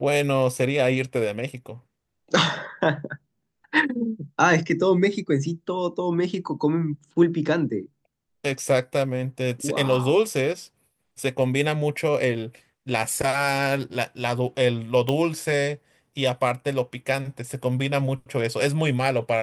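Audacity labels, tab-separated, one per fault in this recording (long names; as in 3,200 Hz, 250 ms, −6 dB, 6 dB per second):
15.090000	15.090000	click −12 dBFS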